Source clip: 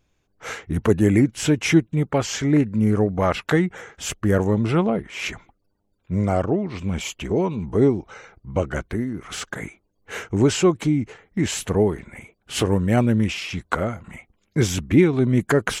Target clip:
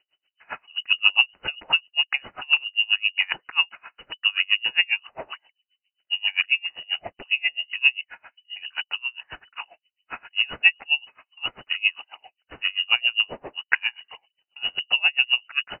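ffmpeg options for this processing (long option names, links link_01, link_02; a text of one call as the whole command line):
ffmpeg -i in.wav -af "equalizer=frequency=990:width_type=o:width=0.47:gain=4,lowpass=frequency=2600:width_type=q:width=0.5098,lowpass=frequency=2600:width_type=q:width=0.6013,lowpass=frequency=2600:width_type=q:width=0.9,lowpass=frequency=2600:width_type=q:width=2.563,afreqshift=-3000,aeval=exprs='val(0)*pow(10,-32*(0.5-0.5*cos(2*PI*7.5*n/s))/20)':channel_layout=same,volume=2dB" out.wav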